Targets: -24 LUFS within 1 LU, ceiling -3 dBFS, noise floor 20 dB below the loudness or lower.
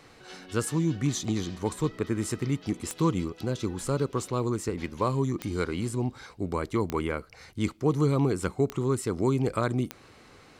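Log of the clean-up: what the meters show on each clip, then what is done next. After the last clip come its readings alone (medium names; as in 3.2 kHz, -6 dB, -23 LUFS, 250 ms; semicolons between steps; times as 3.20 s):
clicks found 5; loudness -29.0 LUFS; peak level -12.5 dBFS; loudness target -24.0 LUFS
-> de-click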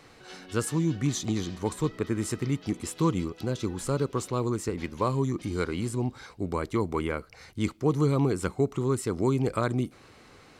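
clicks found 0; loudness -29.0 LUFS; peak level -12.5 dBFS; loudness target -24.0 LUFS
-> trim +5 dB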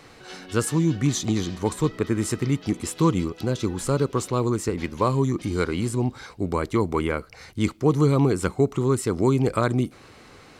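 loudness -24.0 LUFS; peak level -7.5 dBFS; noise floor -49 dBFS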